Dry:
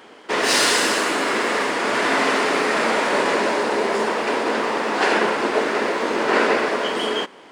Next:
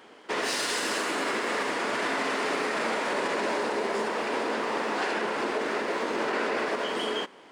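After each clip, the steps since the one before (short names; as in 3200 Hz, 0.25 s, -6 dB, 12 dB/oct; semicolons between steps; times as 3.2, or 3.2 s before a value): limiter -13 dBFS, peak gain reduction 7.5 dB; gain -6.5 dB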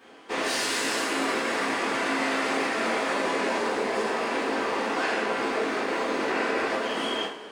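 two-slope reverb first 0.4 s, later 3.3 s, from -20 dB, DRR -8 dB; gain -6.5 dB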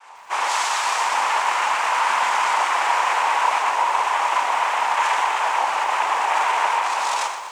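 noise vocoder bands 4; resonant high-pass 960 Hz, resonance Q 4.9; lo-fi delay 0.122 s, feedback 55%, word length 8-bit, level -11 dB; gain +2 dB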